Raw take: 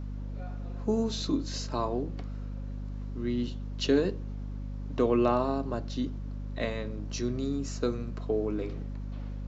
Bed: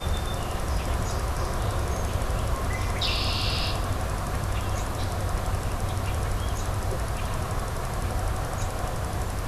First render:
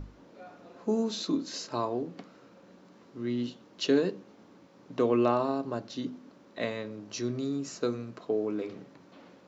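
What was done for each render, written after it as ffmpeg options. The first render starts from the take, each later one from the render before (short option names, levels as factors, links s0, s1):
-af "bandreject=f=50:t=h:w=6,bandreject=f=100:t=h:w=6,bandreject=f=150:t=h:w=6,bandreject=f=200:t=h:w=6,bandreject=f=250:t=h:w=6"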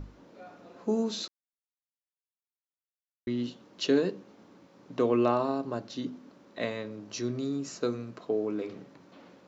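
-filter_complex "[0:a]asplit=3[s0][s1][s2];[s0]atrim=end=1.28,asetpts=PTS-STARTPTS,afade=t=out:st=1.276:d=0.004:c=hsin[s3];[s1]atrim=start=1.28:end=3.27,asetpts=PTS-STARTPTS,volume=0[s4];[s2]atrim=start=3.27,asetpts=PTS-STARTPTS,afade=t=in:d=0.004:c=hsin[s5];[s3][s4][s5]concat=n=3:v=0:a=1"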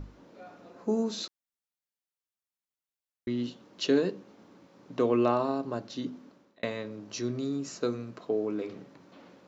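-filter_complex "[0:a]asettb=1/sr,asplit=3[s0][s1][s2];[s0]atrim=end=0.704[s3];[s1]atrim=start=0.7:end=1.18,asetpts=PTS-STARTPTS,afade=t=in:d=0.004:c=qsin,afade=t=out:st=0.476:d=0.004:c=qsin,equalizer=f=3200:w=1.5:g=-4.5[s4];[s2]atrim=start=1.176[s5];[s3][s4]acrossfade=d=0.004:c1=hsin:c2=qsin[s6];[s6][s5]acrossfade=d=0.004:c1=qsin:c2=hsin,asplit=2[s7][s8];[s7]atrim=end=6.63,asetpts=PTS-STARTPTS,afade=t=out:st=6.23:d=0.4[s9];[s8]atrim=start=6.63,asetpts=PTS-STARTPTS,afade=t=in:d=0.004:c=hsin[s10];[s9][s10]concat=n=2:v=0:a=1"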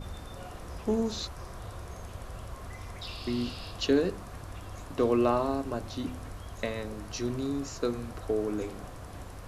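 -filter_complex "[1:a]volume=0.188[s0];[0:a][s0]amix=inputs=2:normalize=0"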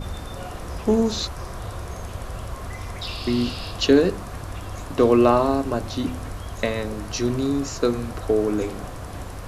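-af "volume=2.82"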